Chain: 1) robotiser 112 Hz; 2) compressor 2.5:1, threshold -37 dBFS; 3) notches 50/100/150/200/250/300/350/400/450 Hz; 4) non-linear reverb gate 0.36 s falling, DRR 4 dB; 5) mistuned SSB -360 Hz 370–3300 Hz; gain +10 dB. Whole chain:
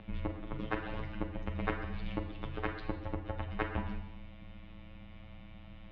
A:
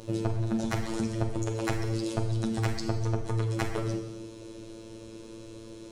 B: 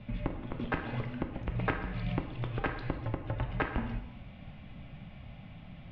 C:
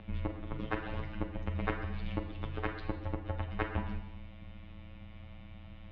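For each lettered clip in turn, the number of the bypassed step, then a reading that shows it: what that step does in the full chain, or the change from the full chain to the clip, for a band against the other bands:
5, 2 kHz band -7.0 dB; 1, 125 Hz band +3.0 dB; 3, 125 Hz band +2.5 dB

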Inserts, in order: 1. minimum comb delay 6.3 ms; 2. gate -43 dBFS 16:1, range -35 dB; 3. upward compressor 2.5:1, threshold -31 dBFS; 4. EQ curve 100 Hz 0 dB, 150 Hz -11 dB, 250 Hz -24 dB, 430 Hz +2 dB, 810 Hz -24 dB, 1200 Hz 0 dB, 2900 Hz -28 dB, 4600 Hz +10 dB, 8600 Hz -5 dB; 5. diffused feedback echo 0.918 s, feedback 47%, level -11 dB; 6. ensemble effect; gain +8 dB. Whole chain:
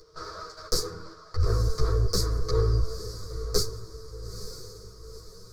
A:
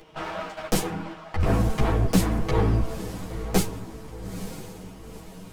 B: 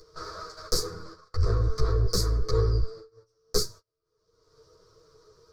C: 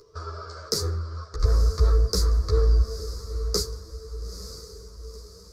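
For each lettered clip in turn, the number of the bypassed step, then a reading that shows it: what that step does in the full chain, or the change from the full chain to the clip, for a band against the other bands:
4, 250 Hz band +12.0 dB; 5, momentary loudness spread change -4 LU; 1, 125 Hz band +2.5 dB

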